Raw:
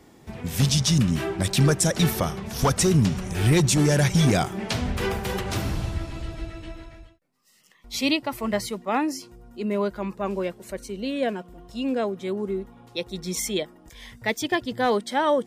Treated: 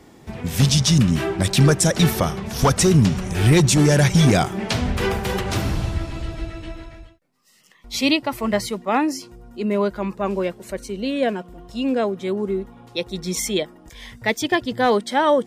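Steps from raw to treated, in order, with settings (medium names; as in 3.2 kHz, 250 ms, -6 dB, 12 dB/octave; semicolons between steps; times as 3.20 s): treble shelf 10 kHz -4 dB; trim +4.5 dB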